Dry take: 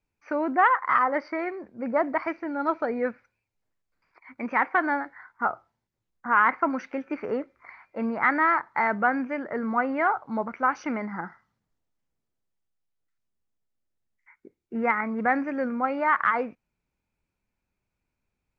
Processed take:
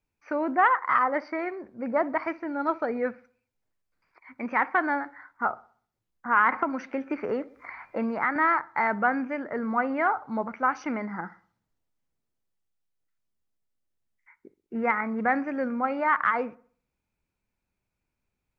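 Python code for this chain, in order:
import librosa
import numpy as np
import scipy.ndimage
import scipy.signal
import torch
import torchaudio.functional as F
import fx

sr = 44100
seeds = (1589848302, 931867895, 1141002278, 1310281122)

y = fx.echo_wet_lowpass(x, sr, ms=63, feedback_pct=41, hz=1400.0, wet_db=-19.5)
y = fx.band_squash(y, sr, depth_pct=70, at=(6.52, 8.36))
y = y * 10.0 ** (-1.0 / 20.0)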